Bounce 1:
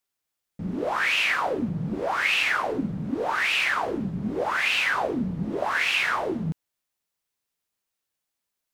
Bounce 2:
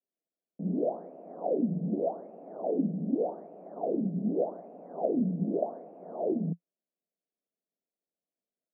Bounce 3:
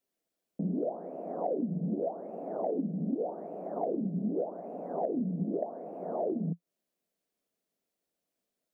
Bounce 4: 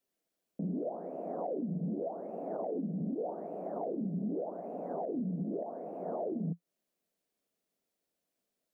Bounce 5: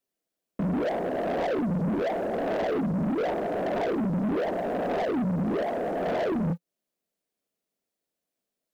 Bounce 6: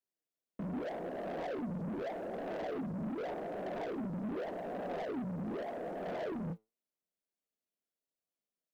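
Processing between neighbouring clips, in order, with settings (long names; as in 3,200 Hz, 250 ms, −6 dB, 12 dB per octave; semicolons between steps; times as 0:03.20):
Chebyshev band-pass filter 170–690 Hz, order 4
downward compressor 4 to 1, threshold −39 dBFS, peak gain reduction 14 dB; level +8 dB
brickwall limiter −28.5 dBFS, peak gain reduction 9 dB
leveller curve on the samples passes 3; level +5 dB
flanger 0.83 Hz, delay 4.8 ms, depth 4.5 ms, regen +79%; level −7 dB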